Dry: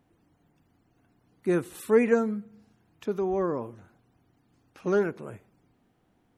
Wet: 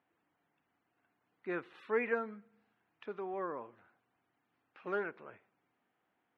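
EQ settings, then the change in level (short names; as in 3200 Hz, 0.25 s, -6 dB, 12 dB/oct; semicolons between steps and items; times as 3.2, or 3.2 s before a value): band-pass 2200 Hz, Q 0.75; air absorption 350 m; 0.0 dB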